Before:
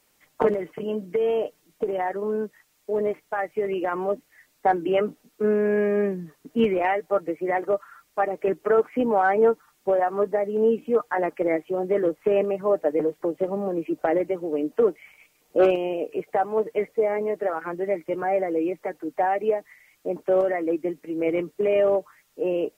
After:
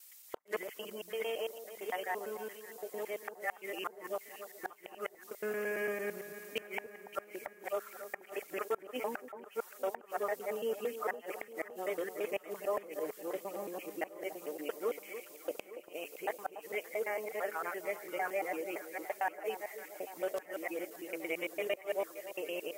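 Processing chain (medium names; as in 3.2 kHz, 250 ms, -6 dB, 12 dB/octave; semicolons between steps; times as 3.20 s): time reversed locally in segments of 113 ms; differentiator; inverted gate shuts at -32 dBFS, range -38 dB; on a send: echo whose repeats swap between lows and highs 286 ms, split 1.2 kHz, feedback 76%, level -11 dB; on the sum: trim +9 dB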